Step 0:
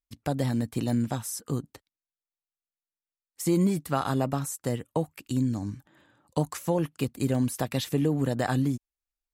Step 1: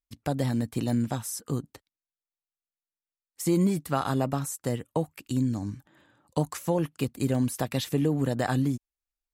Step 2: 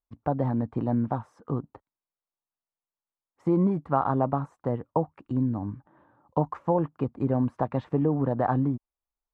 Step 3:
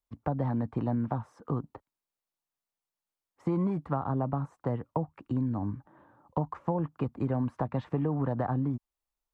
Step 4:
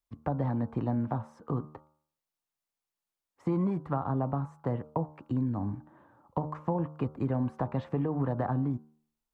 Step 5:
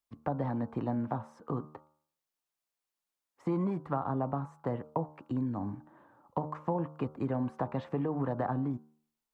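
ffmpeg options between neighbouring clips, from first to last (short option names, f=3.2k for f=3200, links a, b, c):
-af anull
-af "lowpass=f=1k:t=q:w=2.1"
-filter_complex "[0:a]acrossover=split=230|740[a][b][c];[a]acompressor=threshold=-31dB:ratio=4[d];[b]acompressor=threshold=-37dB:ratio=4[e];[c]acompressor=threshold=-38dB:ratio=4[f];[d][e][f]amix=inputs=3:normalize=0,volume=1.5dB"
-af "bandreject=f=76.19:t=h:w=4,bandreject=f=152.38:t=h:w=4,bandreject=f=228.57:t=h:w=4,bandreject=f=304.76:t=h:w=4,bandreject=f=380.95:t=h:w=4,bandreject=f=457.14:t=h:w=4,bandreject=f=533.33:t=h:w=4,bandreject=f=609.52:t=h:w=4,bandreject=f=685.71:t=h:w=4,bandreject=f=761.9:t=h:w=4,bandreject=f=838.09:t=h:w=4,bandreject=f=914.28:t=h:w=4,bandreject=f=990.47:t=h:w=4,bandreject=f=1.06666k:t=h:w=4,bandreject=f=1.14285k:t=h:w=4,bandreject=f=1.21904k:t=h:w=4,bandreject=f=1.29523k:t=h:w=4,bandreject=f=1.37142k:t=h:w=4,bandreject=f=1.44761k:t=h:w=4,bandreject=f=1.5238k:t=h:w=4"
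-af "lowshelf=f=110:g=-12"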